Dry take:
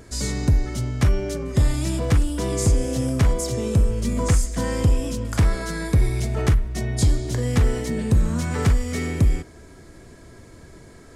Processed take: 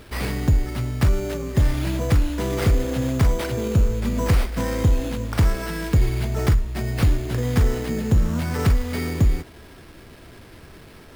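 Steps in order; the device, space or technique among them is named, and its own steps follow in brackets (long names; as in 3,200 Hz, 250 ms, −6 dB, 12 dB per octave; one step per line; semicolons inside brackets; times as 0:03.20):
early 8-bit sampler (sample-rate reduction 6,900 Hz, jitter 0%; bit reduction 8 bits)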